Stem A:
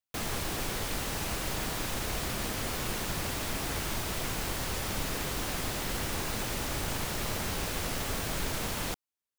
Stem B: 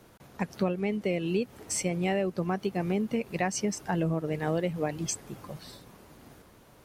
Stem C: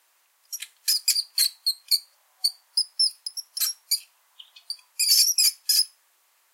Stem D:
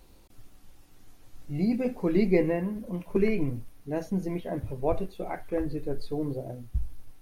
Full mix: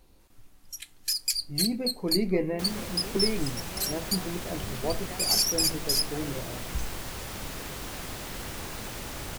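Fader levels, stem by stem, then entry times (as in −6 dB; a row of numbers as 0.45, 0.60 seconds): −4.0, −16.0, −6.0, −3.5 decibels; 2.45, 1.70, 0.20, 0.00 seconds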